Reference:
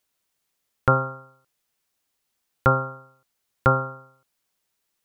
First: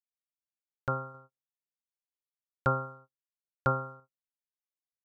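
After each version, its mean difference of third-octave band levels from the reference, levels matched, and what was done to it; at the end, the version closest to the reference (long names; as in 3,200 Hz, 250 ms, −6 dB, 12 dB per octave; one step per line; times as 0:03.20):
1.0 dB: low-pass that shuts in the quiet parts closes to 330 Hz, open at −20.5 dBFS
noise gate −45 dBFS, range −35 dB
sample-and-hold tremolo
level −8.5 dB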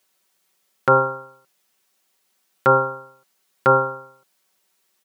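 2.0 dB: high-pass filter 200 Hz 12 dB per octave
comb filter 5.3 ms, depth 53%
brickwall limiter −12 dBFS, peak gain reduction 6.5 dB
level +7.5 dB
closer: first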